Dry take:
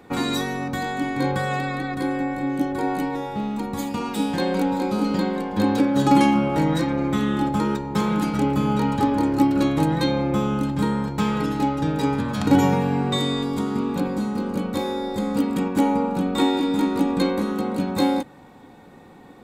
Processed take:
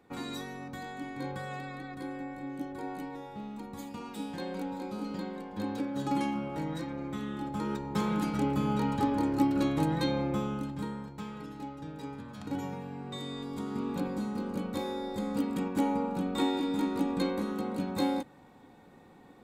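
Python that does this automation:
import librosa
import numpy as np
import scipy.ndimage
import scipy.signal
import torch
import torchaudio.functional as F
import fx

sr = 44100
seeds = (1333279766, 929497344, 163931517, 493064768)

y = fx.gain(x, sr, db=fx.line((7.43, -14.5), (7.85, -8.0), (10.23, -8.0), (11.3, -19.0), (12.97, -19.0), (13.89, -9.0)))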